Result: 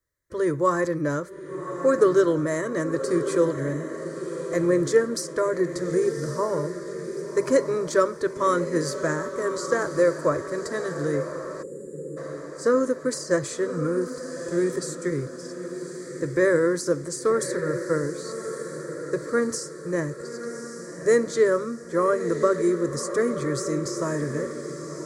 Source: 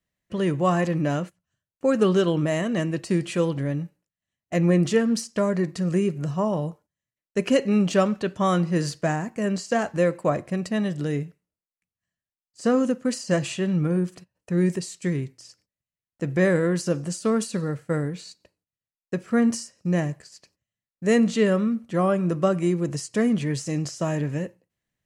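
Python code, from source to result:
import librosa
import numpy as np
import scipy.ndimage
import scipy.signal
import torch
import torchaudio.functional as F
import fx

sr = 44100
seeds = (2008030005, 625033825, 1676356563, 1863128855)

y = fx.fixed_phaser(x, sr, hz=750.0, stages=6)
y = fx.echo_diffused(y, sr, ms=1151, feedback_pct=51, wet_db=-9.0)
y = fx.spec_box(y, sr, start_s=11.63, length_s=0.54, low_hz=570.0, high_hz=6800.0, gain_db=-25)
y = y * 10.0 ** (3.5 / 20.0)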